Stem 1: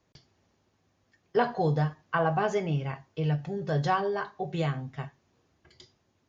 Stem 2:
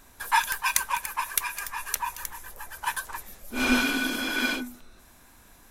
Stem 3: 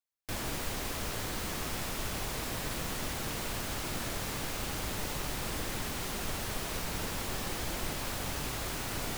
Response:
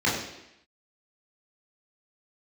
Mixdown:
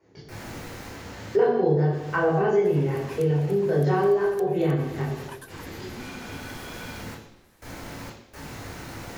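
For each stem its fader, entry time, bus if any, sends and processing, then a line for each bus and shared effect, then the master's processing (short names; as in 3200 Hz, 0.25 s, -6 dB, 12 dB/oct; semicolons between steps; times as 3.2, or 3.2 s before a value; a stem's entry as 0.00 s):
-2.0 dB, 0.00 s, send -4.5 dB, bell 390 Hz +12.5 dB 0.64 oct
-9.5 dB, 2.45 s, no send, compressor, threshold -30 dBFS, peak gain reduction 12.5 dB
-7.5 dB, 0.00 s, send -10.5 dB, step gate "xxxxxx..xx.x" 63 bpm -24 dB; auto duck -14 dB, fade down 0.50 s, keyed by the first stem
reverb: on, RT60 0.85 s, pre-delay 16 ms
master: compressor 2:1, threshold -27 dBFS, peak gain reduction 13 dB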